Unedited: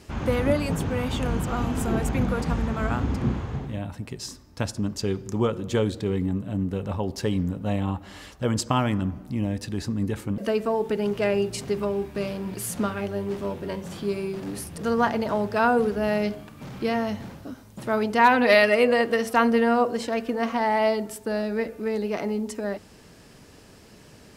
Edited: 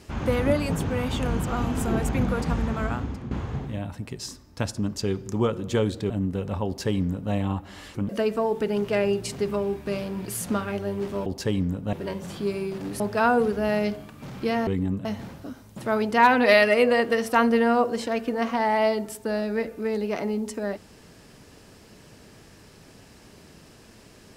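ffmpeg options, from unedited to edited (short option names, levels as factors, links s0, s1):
-filter_complex "[0:a]asplit=9[s0][s1][s2][s3][s4][s5][s6][s7][s8];[s0]atrim=end=3.31,asetpts=PTS-STARTPTS,afade=t=out:st=2.75:d=0.56:silence=0.188365[s9];[s1]atrim=start=3.31:end=6.102,asetpts=PTS-STARTPTS,afade=t=in:d=0.004:c=hsin:silence=0.188365[s10];[s2]atrim=start=6.478:end=8.332[s11];[s3]atrim=start=10.238:end=13.552[s12];[s4]atrim=start=7.038:end=7.712[s13];[s5]atrim=start=13.548:end=14.622[s14];[s6]atrim=start=15.388:end=17.062[s15];[s7]atrim=start=6.098:end=6.482[s16];[s8]atrim=start=17.058[s17];[s9][s10]concat=n=2:v=0:a=1[s18];[s18][s11]acrossfade=d=0.004:c1=hsin:c2=hsin[s19];[s19][s12]acrossfade=d=0.004:c1=hsin:c2=hsin[s20];[s20][s13]acrossfade=d=0.004:c1=hsin:c2=hsin[s21];[s21][s14]acrossfade=d=0.004:c1=hsin:c2=hsin[s22];[s22][s15]acrossfade=d=0.004:c1=hsin:c2=hsin[s23];[s23][s16]acrossfade=d=0.004:c1=hsin:c2=hsin[s24];[s24][s17]acrossfade=d=0.004:c1=hsin:c2=hsin"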